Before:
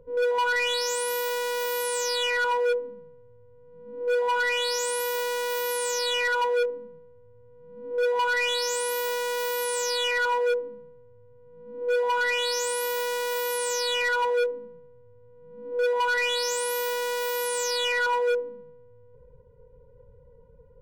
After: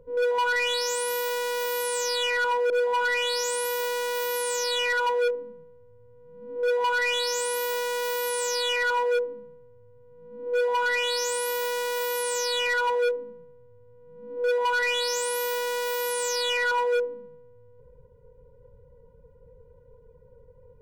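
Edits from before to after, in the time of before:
2.7–4.05 cut

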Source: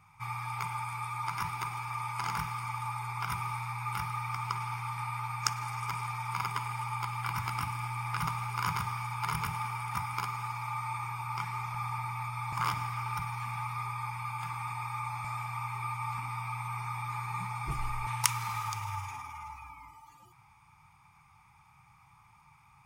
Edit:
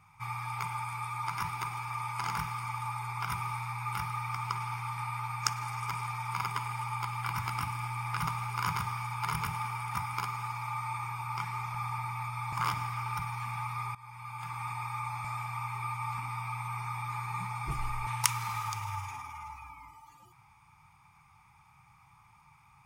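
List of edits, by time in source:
13.95–14.65 fade in, from -18.5 dB

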